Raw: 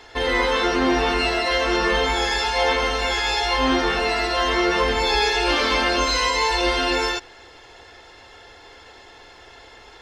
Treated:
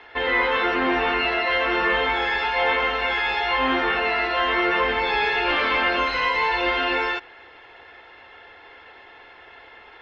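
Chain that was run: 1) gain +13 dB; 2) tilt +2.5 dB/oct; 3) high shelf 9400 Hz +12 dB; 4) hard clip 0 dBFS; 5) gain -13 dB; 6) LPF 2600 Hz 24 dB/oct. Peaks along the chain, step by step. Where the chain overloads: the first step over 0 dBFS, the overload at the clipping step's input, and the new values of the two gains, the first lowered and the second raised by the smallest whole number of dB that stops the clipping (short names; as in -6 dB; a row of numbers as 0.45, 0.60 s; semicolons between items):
+6.0, +7.0, +8.0, 0.0, -13.0, -11.5 dBFS; step 1, 8.0 dB; step 1 +5 dB, step 5 -5 dB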